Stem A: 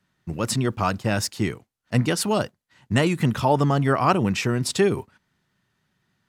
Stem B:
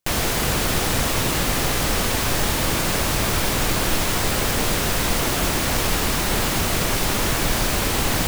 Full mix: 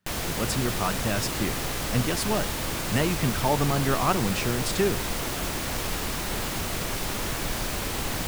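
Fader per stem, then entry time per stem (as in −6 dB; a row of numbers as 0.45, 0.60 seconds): −5.0, −8.5 decibels; 0.00, 0.00 seconds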